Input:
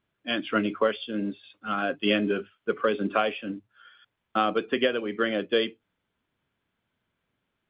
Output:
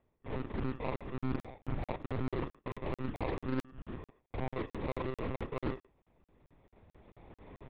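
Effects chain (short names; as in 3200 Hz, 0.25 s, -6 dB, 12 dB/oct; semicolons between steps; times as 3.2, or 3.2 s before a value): local time reversal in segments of 30 ms; recorder AGC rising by 12 dB/s; dynamic EQ 200 Hz, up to +4 dB, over -36 dBFS, Q 0.98; reverse; compressor 16:1, threshold -37 dBFS, peak gain reduction 22.5 dB; reverse; sample-and-hold 30×; air absorption 270 m; doubler 36 ms -3 dB; monotone LPC vocoder at 8 kHz 130 Hz; speakerphone echo 0.11 s, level -19 dB; crackling interface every 0.22 s, samples 2048, zero, from 0.96; Doppler distortion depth 0.46 ms; gain +4.5 dB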